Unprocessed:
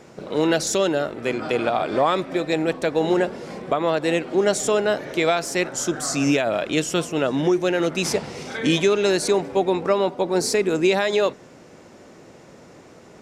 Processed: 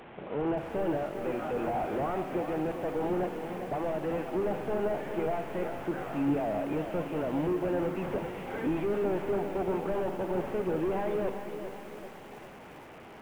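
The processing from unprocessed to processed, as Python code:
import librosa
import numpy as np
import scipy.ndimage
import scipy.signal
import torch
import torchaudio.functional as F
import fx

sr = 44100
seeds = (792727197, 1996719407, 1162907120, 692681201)

y = fx.delta_mod(x, sr, bps=16000, step_db=-36.0)
y = fx.peak_eq(y, sr, hz=820.0, db=6.5, octaves=0.46)
y = fx.rev_spring(y, sr, rt60_s=1.5, pass_ms=(39, 57), chirp_ms=40, drr_db=12.0)
y = fx.echo_crushed(y, sr, ms=395, feedback_pct=55, bits=7, wet_db=-9)
y = y * 10.0 ** (-8.0 / 20.0)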